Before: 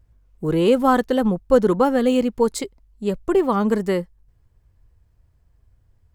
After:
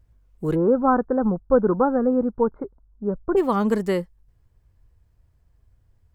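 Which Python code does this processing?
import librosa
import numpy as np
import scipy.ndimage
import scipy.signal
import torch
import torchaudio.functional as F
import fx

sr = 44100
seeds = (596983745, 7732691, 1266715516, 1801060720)

y = fx.cheby1_lowpass(x, sr, hz=1500.0, order=5, at=(0.54, 3.36), fade=0.02)
y = y * 10.0 ** (-1.5 / 20.0)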